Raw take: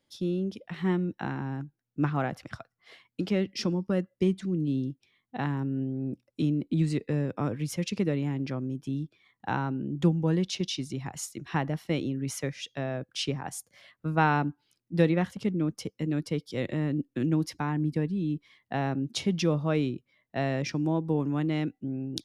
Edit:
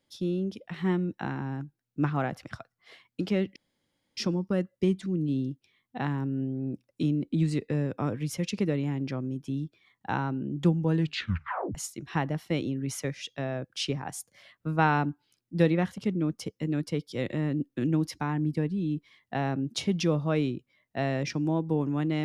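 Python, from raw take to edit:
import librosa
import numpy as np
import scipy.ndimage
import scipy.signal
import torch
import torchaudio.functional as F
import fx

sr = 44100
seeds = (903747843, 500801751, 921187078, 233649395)

y = fx.edit(x, sr, fx.insert_room_tone(at_s=3.56, length_s=0.61),
    fx.tape_stop(start_s=10.32, length_s=0.82), tone=tone)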